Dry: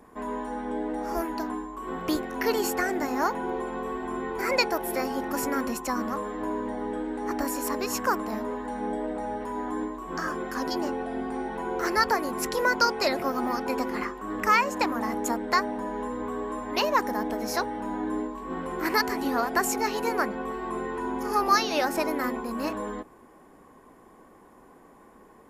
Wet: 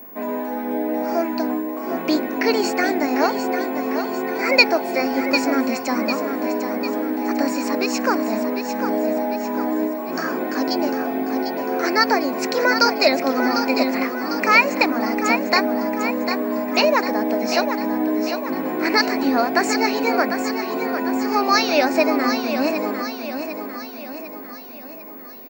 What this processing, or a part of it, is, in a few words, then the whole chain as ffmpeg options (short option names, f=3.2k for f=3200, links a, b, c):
old television with a line whistle: -af "highpass=f=180:w=0.5412,highpass=f=180:w=1.3066,equalizer=f=270:t=q:w=4:g=5,equalizer=f=640:t=q:w=4:g=7,equalizer=f=1.1k:t=q:w=4:g=-5,equalizer=f=2.4k:t=q:w=4:g=10,equalizer=f=4.3k:t=q:w=4:g=7,lowpass=f=7k:w=0.5412,lowpass=f=7k:w=1.3066,equalizer=f=3.2k:t=o:w=0.5:g=-5.5,aecho=1:1:749|1498|2247|2996|3745|4494:0.398|0.203|0.104|0.0528|0.0269|0.0137,aeval=exprs='val(0)+0.00708*sin(2*PI*15625*n/s)':c=same,volume=5dB"